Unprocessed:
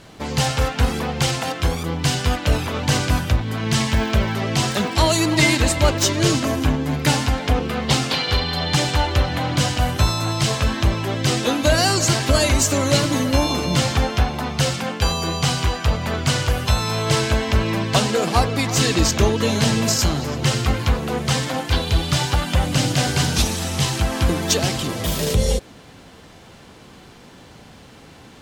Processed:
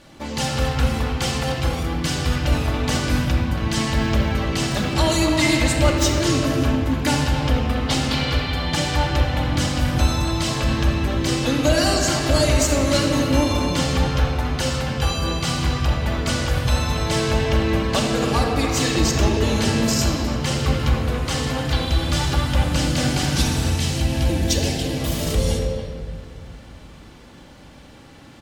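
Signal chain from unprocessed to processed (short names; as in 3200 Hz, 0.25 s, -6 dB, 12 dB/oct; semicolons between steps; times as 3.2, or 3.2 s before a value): 23.76–24.97 bell 1200 Hz -12.5 dB 0.56 oct; speakerphone echo 0.28 s, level -9 dB; shoebox room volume 3900 m³, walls mixed, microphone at 2.4 m; gain -5 dB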